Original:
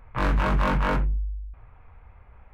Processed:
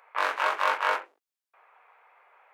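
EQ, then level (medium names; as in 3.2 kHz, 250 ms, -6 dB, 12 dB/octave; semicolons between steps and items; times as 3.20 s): Bessel high-pass 770 Hz, order 8; +3.5 dB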